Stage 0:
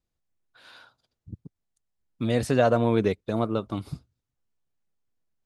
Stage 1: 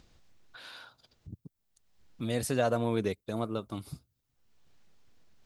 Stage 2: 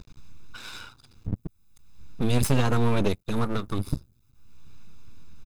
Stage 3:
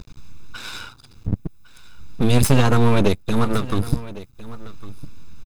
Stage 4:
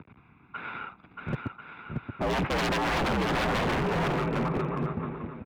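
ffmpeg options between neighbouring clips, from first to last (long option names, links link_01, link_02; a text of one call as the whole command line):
ffmpeg -i in.wav -filter_complex "[0:a]aemphasis=mode=production:type=50fm,acrossover=split=5600[link_01][link_02];[link_01]acompressor=mode=upward:threshold=-32dB:ratio=2.5[link_03];[link_03][link_02]amix=inputs=2:normalize=0,volume=-7dB" out.wav
ffmpeg -i in.wav -af "lowshelf=frequency=210:gain=8.5,aecho=1:1:0.8:0.87,aeval=exprs='max(val(0),0)':channel_layout=same,volume=8dB" out.wav
ffmpeg -i in.wav -af "aecho=1:1:1106:0.133,volume=7dB" out.wav
ffmpeg -i in.wav -af "aecho=1:1:630|1040|1306|1479|1591:0.631|0.398|0.251|0.158|0.1,highpass=frequency=190:width_type=q:width=0.5412,highpass=frequency=190:width_type=q:width=1.307,lowpass=frequency=2500:width_type=q:width=0.5176,lowpass=frequency=2500:width_type=q:width=0.7071,lowpass=frequency=2500:width_type=q:width=1.932,afreqshift=-61,aeval=exprs='0.0794*(abs(mod(val(0)/0.0794+3,4)-2)-1)':channel_layout=same" out.wav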